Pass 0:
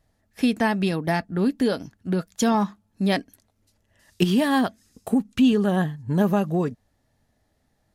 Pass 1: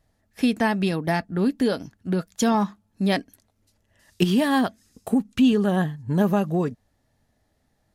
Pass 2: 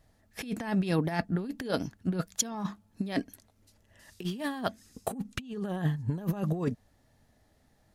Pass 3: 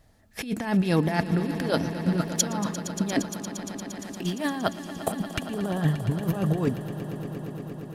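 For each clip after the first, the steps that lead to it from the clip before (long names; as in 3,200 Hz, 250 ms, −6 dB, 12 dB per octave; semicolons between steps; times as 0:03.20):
no processing that can be heard
compressor whose output falls as the input rises −26 dBFS, ratio −0.5; level −3.5 dB
echo that builds up and dies away 116 ms, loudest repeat 5, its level −15 dB; level +5 dB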